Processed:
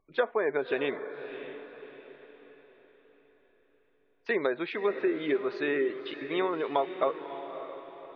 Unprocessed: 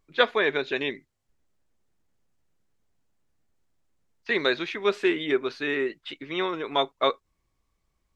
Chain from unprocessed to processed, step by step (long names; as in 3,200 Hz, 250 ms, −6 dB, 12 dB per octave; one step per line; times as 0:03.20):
treble cut that deepens with the level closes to 1,700 Hz, closed at −20.5 dBFS
gate on every frequency bin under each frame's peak −30 dB strong
parametric band 620 Hz +9 dB 2.1 octaves
downward compressor 4 to 1, threshold −19 dBFS, peak gain reduction 9.5 dB
feedback delay with all-pass diffusion 587 ms, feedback 43%, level −10.5 dB
level −5 dB